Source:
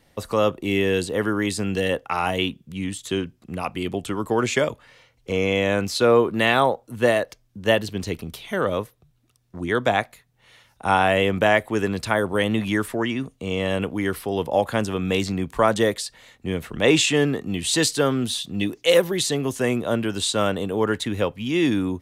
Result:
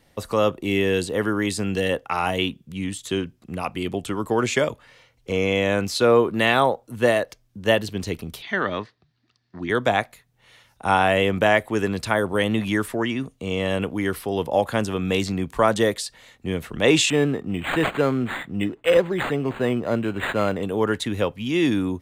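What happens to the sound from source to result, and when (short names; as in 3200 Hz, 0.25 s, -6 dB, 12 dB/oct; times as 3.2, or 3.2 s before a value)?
8.42–9.7 speaker cabinet 110–5200 Hz, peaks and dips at 140 Hz -7 dB, 510 Hz -9 dB, 1800 Hz +9 dB, 4500 Hz +9 dB
17.1–20.63 decimation joined by straight lines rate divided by 8×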